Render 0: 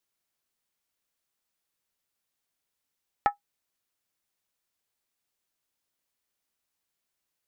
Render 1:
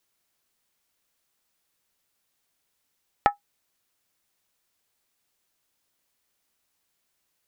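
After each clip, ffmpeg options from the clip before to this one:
-af "acompressor=threshold=0.0631:ratio=6,volume=2.37"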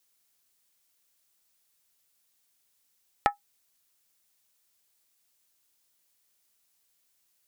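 -af "highshelf=f=3400:g=10,volume=0.596"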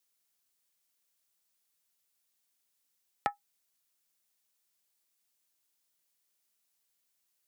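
-af "highpass=f=100:w=0.5412,highpass=f=100:w=1.3066,volume=0.473"

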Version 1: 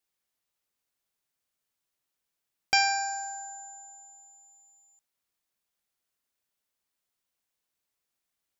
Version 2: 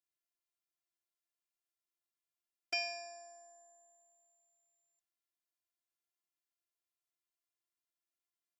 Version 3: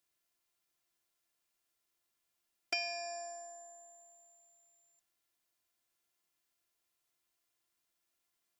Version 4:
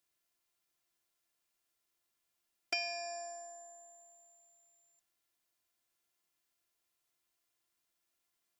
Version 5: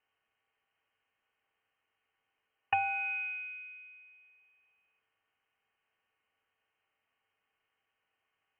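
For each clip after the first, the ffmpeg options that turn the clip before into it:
-af "highpass=140,afftfilt=real='hypot(re,im)*cos(PI*b)':imag='0':win_size=512:overlap=0.75,volume=0.355"
-af "acompressor=threshold=0.00447:ratio=2.5,volume=3.16"
-af anull
-af "lowpass=f=2700:t=q:w=0.5098,lowpass=f=2700:t=q:w=0.6013,lowpass=f=2700:t=q:w=0.9,lowpass=f=2700:t=q:w=2.563,afreqshift=-3200,volume=2.66"

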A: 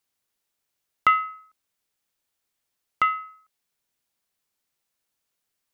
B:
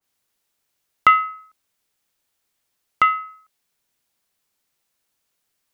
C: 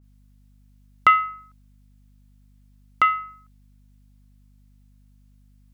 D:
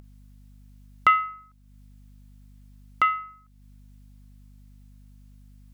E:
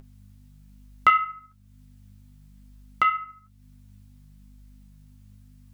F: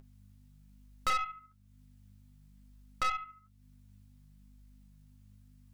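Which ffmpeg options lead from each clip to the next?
-af "adynamicequalizer=threshold=0.0251:dfrequency=1900:dqfactor=0.7:tfrequency=1900:tqfactor=0.7:attack=5:release=100:ratio=0.375:range=2:mode=cutabove:tftype=highshelf,volume=1.88"
-af "aeval=exprs='val(0)+0.00251*(sin(2*PI*50*n/s)+sin(2*PI*2*50*n/s)/2+sin(2*PI*3*50*n/s)/3+sin(2*PI*4*50*n/s)/4+sin(2*PI*5*50*n/s)/5)':c=same,volume=0.794"
-af "acompressor=mode=upward:threshold=0.0112:ratio=2.5,volume=0.708"
-af "flanger=delay=7.4:depth=9.8:regen=45:speed=0.54:shape=triangular,volume=1.78"
-af "aeval=exprs='(tanh(15.8*val(0)+0.75)-tanh(0.75))/15.8':c=same,volume=0.708"

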